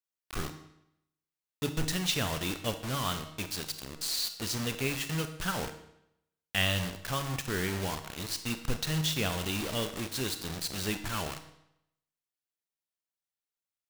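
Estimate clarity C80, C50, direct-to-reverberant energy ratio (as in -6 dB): 13.0 dB, 10.5 dB, 8.5 dB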